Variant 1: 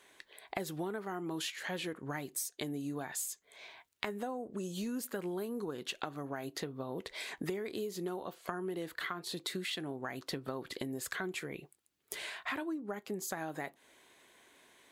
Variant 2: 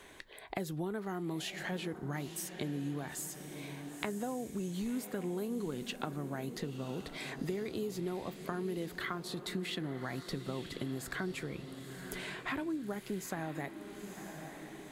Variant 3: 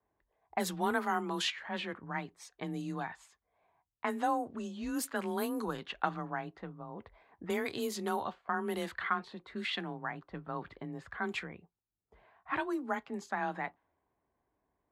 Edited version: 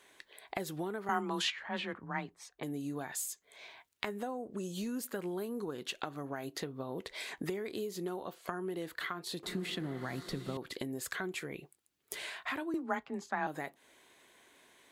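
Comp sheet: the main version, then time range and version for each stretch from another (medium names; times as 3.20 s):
1
1.09–2.63 s: from 3
9.43–10.57 s: from 2
12.74–13.47 s: from 3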